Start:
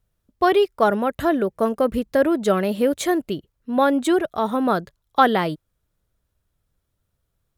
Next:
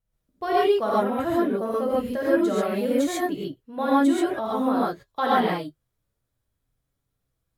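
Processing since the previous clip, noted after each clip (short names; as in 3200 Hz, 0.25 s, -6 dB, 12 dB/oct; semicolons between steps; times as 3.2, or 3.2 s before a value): flange 0.27 Hz, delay 6 ms, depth 4.1 ms, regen -50%; non-linear reverb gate 0.16 s rising, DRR -7 dB; gain -7.5 dB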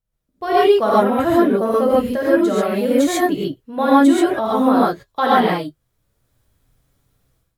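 AGC gain up to 16 dB; gain -1 dB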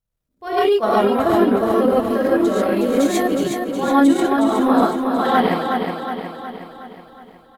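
transient shaper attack -11 dB, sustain -7 dB; on a send: feedback echo 0.366 s, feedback 54%, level -5 dB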